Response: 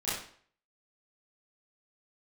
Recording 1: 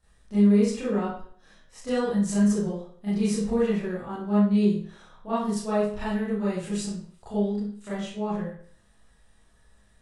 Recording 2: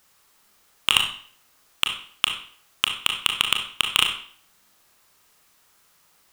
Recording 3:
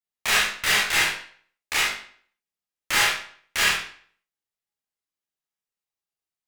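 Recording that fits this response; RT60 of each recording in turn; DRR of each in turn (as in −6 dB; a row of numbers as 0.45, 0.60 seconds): 1; 0.55, 0.50, 0.55 seconds; −12.5, 3.0, −6.5 decibels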